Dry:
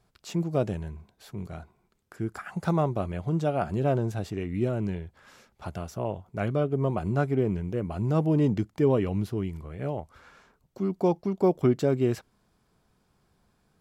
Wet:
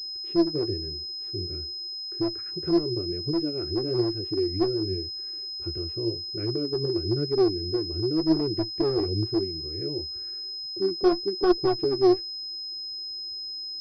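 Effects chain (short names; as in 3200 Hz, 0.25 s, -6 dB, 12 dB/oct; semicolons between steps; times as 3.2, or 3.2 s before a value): EQ curve 110 Hz 0 dB, 240 Hz -18 dB, 340 Hz +15 dB, 680 Hz -25 dB, 2000 Hz -9 dB; in parallel at 0 dB: compressor 12:1, threshold -31 dBFS, peak gain reduction 21.5 dB; on the sum: one-sided clip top -18 dBFS, bottom -9 dBFS; flange 0.95 Hz, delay 4.3 ms, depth 9.8 ms, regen +40%; pulse-width modulation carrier 5100 Hz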